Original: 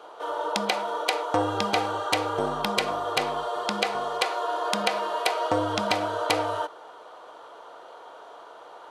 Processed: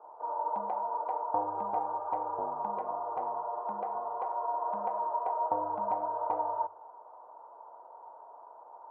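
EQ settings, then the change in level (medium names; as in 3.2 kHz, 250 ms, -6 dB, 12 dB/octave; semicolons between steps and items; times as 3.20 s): four-pole ladder low-pass 1 kHz, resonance 75%; peaking EQ 630 Hz +4.5 dB 0.63 oct; hum notches 50/100/150 Hz; -4.5 dB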